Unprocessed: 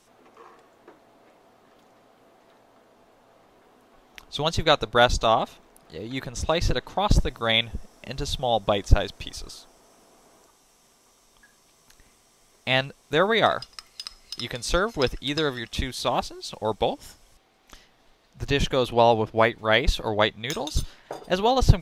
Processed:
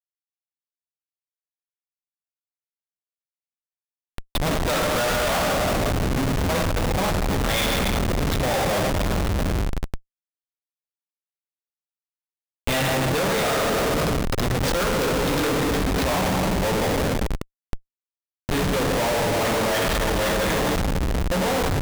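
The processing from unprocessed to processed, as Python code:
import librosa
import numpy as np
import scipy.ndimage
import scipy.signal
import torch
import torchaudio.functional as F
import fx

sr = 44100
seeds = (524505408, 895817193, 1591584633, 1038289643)

y = fx.delta_hold(x, sr, step_db=-19.0, at=(4.37, 5.38), fade=0.02)
y = fx.rev_fdn(y, sr, rt60_s=2.8, lf_ratio=1.0, hf_ratio=0.9, size_ms=33.0, drr_db=-3.0)
y = fx.schmitt(y, sr, flips_db=-24.5)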